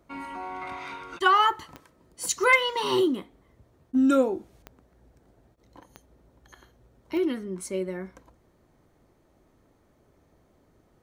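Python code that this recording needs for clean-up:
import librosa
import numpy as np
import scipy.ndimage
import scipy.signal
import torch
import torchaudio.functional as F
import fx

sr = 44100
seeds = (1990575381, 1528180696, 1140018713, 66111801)

y = fx.fix_declip(x, sr, threshold_db=-9.5)
y = fx.fix_declick_ar(y, sr, threshold=10.0)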